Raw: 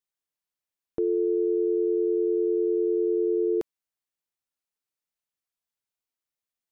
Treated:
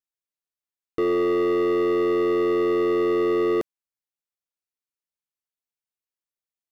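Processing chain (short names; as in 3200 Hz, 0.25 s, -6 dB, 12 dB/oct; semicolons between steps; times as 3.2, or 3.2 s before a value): sample leveller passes 3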